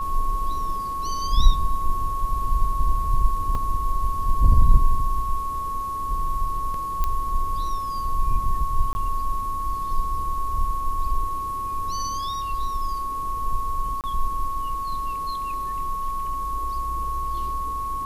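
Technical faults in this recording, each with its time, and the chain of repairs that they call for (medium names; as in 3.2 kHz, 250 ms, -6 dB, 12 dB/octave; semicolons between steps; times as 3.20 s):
whine 1.1 kHz -26 dBFS
3.55 s: dropout 3.1 ms
7.04 s: pop -11 dBFS
8.93–8.95 s: dropout 20 ms
14.01–14.04 s: dropout 28 ms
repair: de-click; band-stop 1.1 kHz, Q 30; interpolate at 3.55 s, 3.1 ms; interpolate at 8.93 s, 20 ms; interpolate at 14.01 s, 28 ms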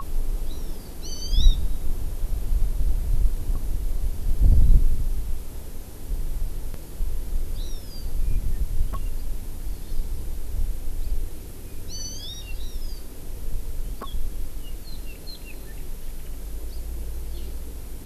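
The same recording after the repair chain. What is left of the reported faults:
nothing left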